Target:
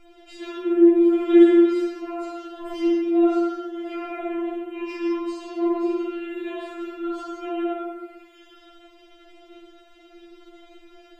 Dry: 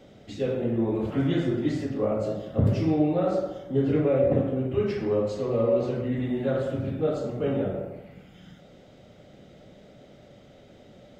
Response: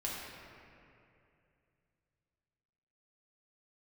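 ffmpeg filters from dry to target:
-filter_complex "[1:a]atrim=start_sample=2205,afade=t=out:st=0.31:d=0.01,atrim=end_sample=14112,asetrate=57330,aresample=44100[a];[0:a][a]afir=irnorm=-1:irlink=0,afftfilt=real='re*4*eq(mod(b,16),0)':imag='im*4*eq(mod(b,16),0)':win_size=2048:overlap=0.75,volume=7.5dB"

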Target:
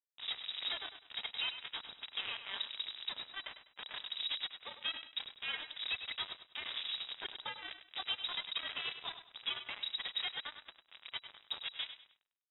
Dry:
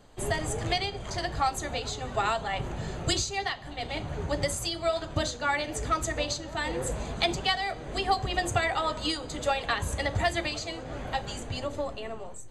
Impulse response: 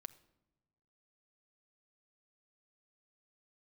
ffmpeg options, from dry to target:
-filter_complex "[0:a]highpass=f=82:p=1,lowshelf=f=180:g=9,alimiter=limit=-19dB:level=0:latency=1:release=230,acrusher=bits=3:mix=0:aa=0.5,tremolo=f=35:d=0.621,asoftclip=type=tanh:threshold=-31.5dB,asplit=2[a][b];[b]aecho=0:1:100|200|300:0.299|0.0896|0.0269[c];[a][c]amix=inputs=2:normalize=0,lowpass=f=3.3k:t=q:w=0.5098,lowpass=f=3.3k:t=q:w=0.6013,lowpass=f=3.3k:t=q:w=0.9,lowpass=f=3.3k:t=q:w=2.563,afreqshift=-3900,volume=2dB"

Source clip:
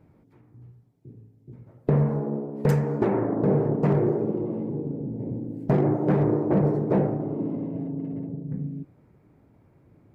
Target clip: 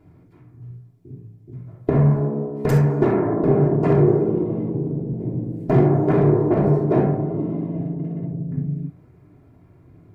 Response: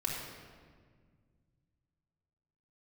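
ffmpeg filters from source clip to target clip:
-filter_complex "[1:a]atrim=start_sample=2205,atrim=end_sample=3087,asetrate=40572,aresample=44100[a];[0:a][a]afir=irnorm=-1:irlink=0,volume=2.5dB"

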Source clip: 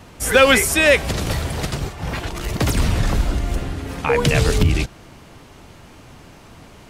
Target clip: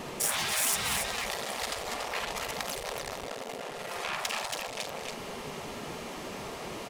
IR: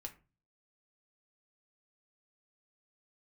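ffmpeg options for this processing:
-filter_complex "[0:a]lowshelf=f=180:g=11.5,aeval=exprs='(tanh(8.91*val(0)+0.1)-tanh(0.1))/8.91':c=same,acompressor=threshold=-24dB:ratio=6,equalizer=f=320:t=o:w=0.28:g=15,bandreject=f=1.5k:w=11,aecho=1:1:49.56|282.8:0.316|0.501,alimiter=limit=-19dB:level=0:latency=1:release=154,asettb=1/sr,asplit=3[a][b][c];[a]atrim=end=0.794[d];[b]atrim=start=0.79:end=3.28,asetpts=PTS-STARTPTS,afade=t=in:d=0.004:c=qsin,afade=t=out:st=2.486:d=0.004:c=qsin,highpass=120[e];[c]atrim=start=3.276[f];[d][e]acrossfade=d=0.004:c1=hsin:c2=qsin[g];[g][f]acrossfade=d=0.004:c1=qsin:c2=hsin,afftfilt=real='re*lt(hypot(re,im),0.0631)':imag='im*lt(hypot(re,im),0.0631)':win_size=1024:overlap=0.75,volume=5dB"

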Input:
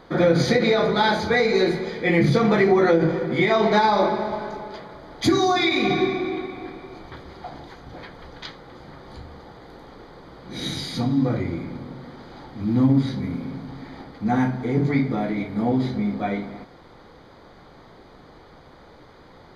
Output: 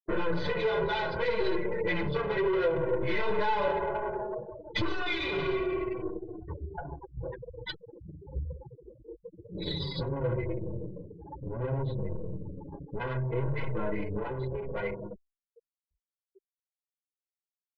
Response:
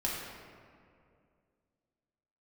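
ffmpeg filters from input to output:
-filter_complex "[0:a]asplit=2[a][b];[b]adelay=92,lowpass=f=1.4k:p=1,volume=-21dB,asplit=2[c][d];[d]adelay=92,lowpass=f=1.4k:p=1,volume=0.44,asplit=2[e][f];[f]adelay=92,lowpass=f=1.4k:p=1,volume=0.44[g];[c][e][g]amix=inputs=3:normalize=0[h];[a][h]amix=inputs=2:normalize=0,afftfilt=real='re*gte(hypot(re,im),0.0398)':imag='im*gte(hypot(re,im),0.0398)':win_size=1024:overlap=0.75,apsyclip=13dB,highpass=f=42:w=0.5412,highpass=f=42:w=1.3066,aeval=exprs='(tanh(3.55*val(0)+0.7)-tanh(0.7))/3.55':c=same,lowpass=f=3.7k:w=0.5412,lowpass=f=3.7k:w=1.3066,acompressor=threshold=-23dB:ratio=4,atempo=1.1,aecho=1:1:2:0.92,asplit=2[i][j];[j]adelay=6,afreqshift=-0.66[k];[i][k]amix=inputs=2:normalize=1,volume=-4dB"

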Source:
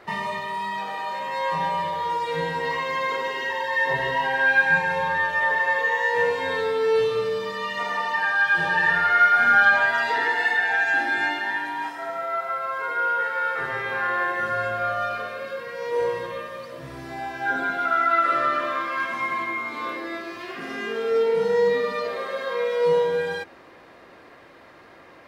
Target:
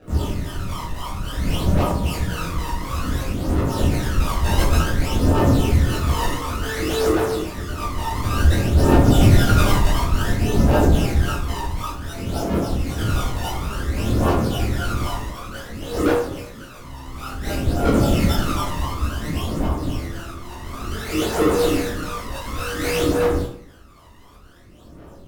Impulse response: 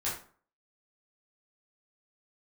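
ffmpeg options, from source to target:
-filter_complex "[0:a]asettb=1/sr,asplit=3[a][b][c];[a]atrim=end=15.934[d];[b]atrim=start=15.93:end=16.68,asetpts=PTS-STARTPTS,afade=t=in:d=0.004:c=qsin,afade=t=out:st=0.746:d=0.004:c=qsin,lowpass=1.1k[e];[c]atrim=start=16.676[f];[d][e]acrossfade=d=0.004:c1=hsin:c2=qsin[g];[g][f]acrossfade=d=0.004:c1=qsin:c2=hsin,acrusher=samples=39:mix=1:aa=0.000001:lfo=1:lforange=39:lforate=3.7,aphaser=in_gain=1:out_gain=1:delay=1.1:decay=0.71:speed=0.56:type=triangular[h];[1:a]atrim=start_sample=2205,asetrate=35280,aresample=44100[i];[h][i]afir=irnorm=-1:irlink=0,volume=-9dB"

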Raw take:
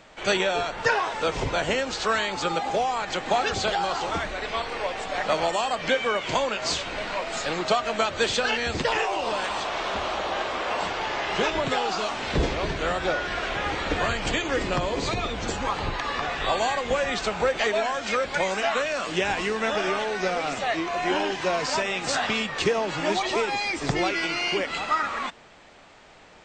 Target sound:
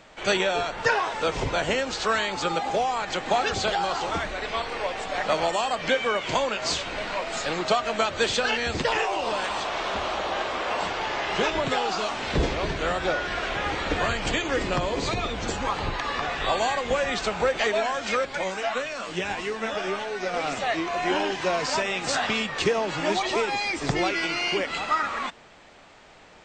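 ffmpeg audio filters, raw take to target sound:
-filter_complex "[0:a]asettb=1/sr,asplit=3[a][b][c];[a]atrim=end=18.254[d];[b]atrim=start=18.25:end=20.34,asetpts=PTS-STARTPTS,afade=t=in:d=0.004:c=qsin,afade=t=out:st=2.086:d=0.004:c=qsin,flanger=delay=7.2:depth=4.2:regen=42:speed=1.6:shape=sinusoidal[e];[c]atrim=start=20.336[f];[d][e]acrossfade=d=0.004:c1=hsin:c2=qsin[g];[g][f]acrossfade=d=0.004:c1=qsin:c2=hsin"

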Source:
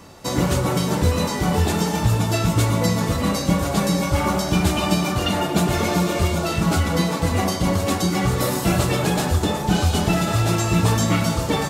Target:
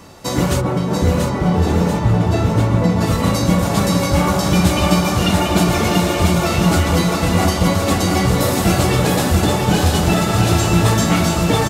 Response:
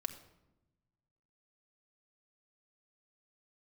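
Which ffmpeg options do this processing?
-filter_complex "[0:a]asplit=3[a][b][c];[a]afade=t=out:st=0.6:d=0.02[d];[b]lowpass=f=1.3k:p=1,afade=t=in:st=0.6:d=0.02,afade=t=out:st=3:d=0.02[e];[c]afade=t=in:st=3:d=0.02[f];[d][e][f]amix=inputs=3:normalize=0,aecho=1:1:687|1374|2061|2748|3435|4122|4809|5496:0.596|0.345|0.2|0.116|0.0674|0.0391|0.0227|0.0132,volume=3dB"

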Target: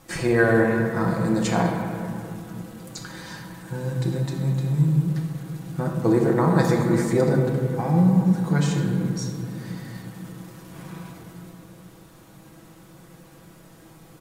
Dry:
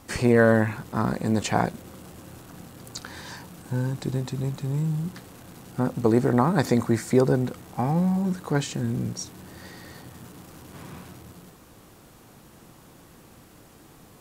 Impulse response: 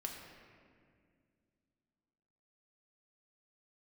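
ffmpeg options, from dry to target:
-filter_complex "[0:a]aecho=1:1:6.1:0.57[a];[1:a]atrim=start_sample=2205,asetrate=35721,aresample=44100[b];[a][b]afir=irnorm=-1:irlink=0"

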